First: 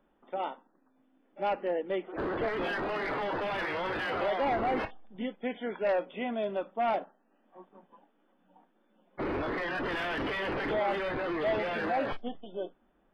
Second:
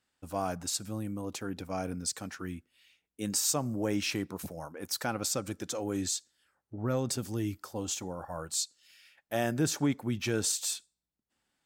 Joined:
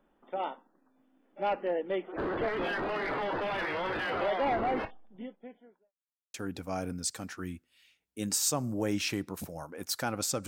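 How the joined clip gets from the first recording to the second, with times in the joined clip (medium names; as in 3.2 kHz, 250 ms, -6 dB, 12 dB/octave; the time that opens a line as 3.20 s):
first
4.48–5.93 s: studio fade out
5.93–6.34 s: mute
6.34 s: go over to second from 1.36 s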